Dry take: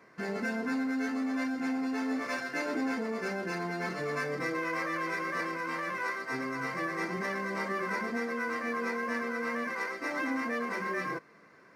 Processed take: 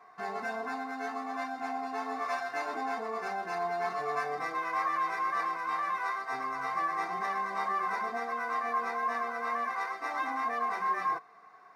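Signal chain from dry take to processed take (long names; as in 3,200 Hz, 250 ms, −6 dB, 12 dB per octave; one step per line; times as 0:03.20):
low shelf with overshoot 600 Hz −7.5 dB, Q 3
hollow resonant body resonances 440/730/1,100/3,700 Hz, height 16 dB, ringing for 50 ms
level −5 dB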